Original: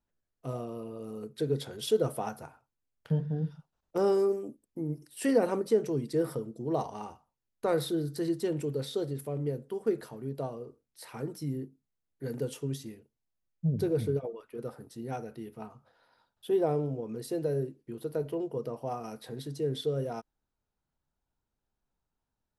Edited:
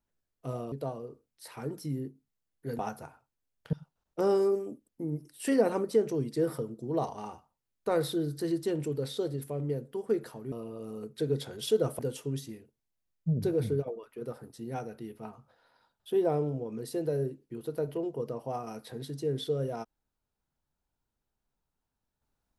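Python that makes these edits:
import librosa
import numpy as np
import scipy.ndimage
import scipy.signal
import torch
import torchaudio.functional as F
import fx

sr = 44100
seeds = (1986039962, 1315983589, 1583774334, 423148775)

y = fx.edit(x, sr, fx.swap(start_s=0.72, length_s=1.47, other_s=10.29, other_length_s=2.07),
    fx.cut(start_s=3.13, length_s=0.37), tone=tone)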